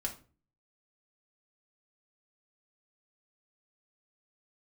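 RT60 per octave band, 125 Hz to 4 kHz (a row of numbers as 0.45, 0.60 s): 0.60, 0.50, 0.40, 0.35, 0.30, 0.25 s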